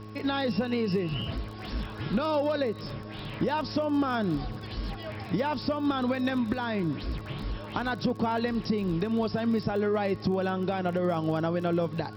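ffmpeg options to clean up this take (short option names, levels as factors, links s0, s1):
-af "adeclick=t=4,bandreject=f=106.5:t=h:w=4,bandreject=f=213:t=h:w=4,bandreject=f=319.5:t=h:w=4,bandreject=f=426:t=h:w=4,bandreject=f=1100:w=30"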